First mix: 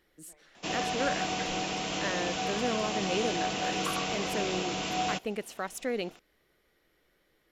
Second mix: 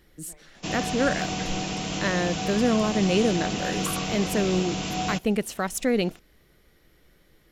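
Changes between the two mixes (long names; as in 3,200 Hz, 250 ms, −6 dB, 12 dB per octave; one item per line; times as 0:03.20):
speech +6.5 dB
master: add bass and treble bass +11 dB, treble +4 dB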